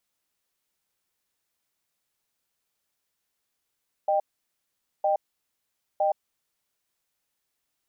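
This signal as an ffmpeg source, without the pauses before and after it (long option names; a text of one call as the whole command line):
ffmpeg -f lavfi -i "aevalsrc='0.0708*(sin(2*PI*612*t)+sin(2*PI*788*t))*clip(min(mod(t,0.96),0.12-mod(t,0.96))/0.005,0,1)':duration=2.17:sample_rate=44100" out.wav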